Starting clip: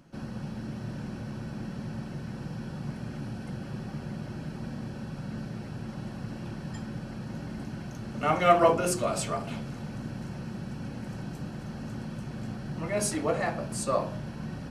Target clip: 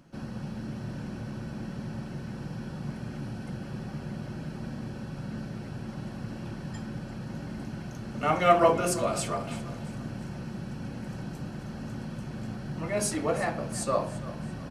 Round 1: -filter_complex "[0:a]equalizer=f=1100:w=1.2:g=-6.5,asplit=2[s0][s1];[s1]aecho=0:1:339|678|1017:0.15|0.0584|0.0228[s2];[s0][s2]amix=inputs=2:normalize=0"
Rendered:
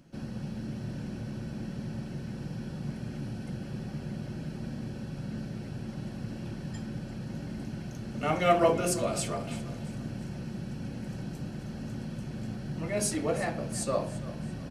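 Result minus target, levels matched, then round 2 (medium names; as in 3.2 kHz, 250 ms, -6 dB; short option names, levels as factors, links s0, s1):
1 kHz band -3.0 dB
-filter_complex "[0:a]asplit=2[s0][s1];[s1]aecho=0:1:339|678|1017:0.15|0.0584|0.0228[s2];[s0][s2]amix=inputs=2:normalize=0"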